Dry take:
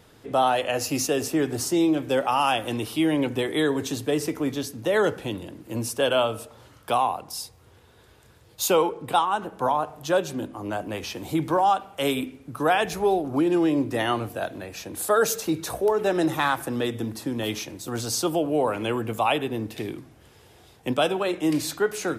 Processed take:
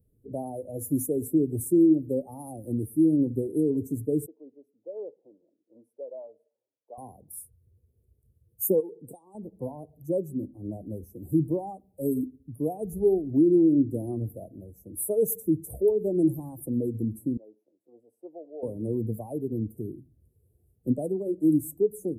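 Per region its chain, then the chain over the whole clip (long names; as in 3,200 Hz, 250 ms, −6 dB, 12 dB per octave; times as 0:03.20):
0:04.26–0:06.98: high-pass filter 700 Hz + high-frequency loss of the air 350 metres
0:08.80–0:09.35: meter weighting curve D + downward compressor 12 to 1, threshold −24 dBFS
0:17.37–0:18.63: high-pass filter 700 Hz + high-frequency loss of the air 460 metres
whole clip: spectral dynamics exaggerated over time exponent 1.5; dynamic equaliser 590 Hz, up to −5 dB, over −35 dBFS, Q 1.6; inverse Chebyshev band-stop filter 1,300–4,500 Hz, stop band 60 dB; level +4.5 dB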